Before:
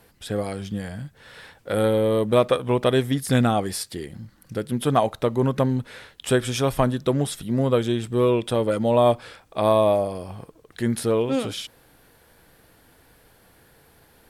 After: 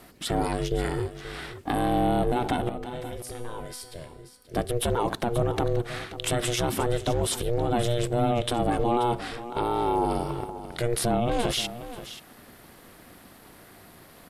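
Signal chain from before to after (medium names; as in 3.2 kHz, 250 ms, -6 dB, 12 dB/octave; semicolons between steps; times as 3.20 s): in parallel at 0 dB: compressor with a negative ratio -24 dBFS; on the sum: peak limiter -14 dBFS, peak gain reduction 10 dB; ring modulator 240 Hz; 2.69–4.54 s: feedback comb 250 Hz, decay 1 s, mix 80%; on a send: delay 531 ms -13.5 dB; on the sum: resampled via 32 kHz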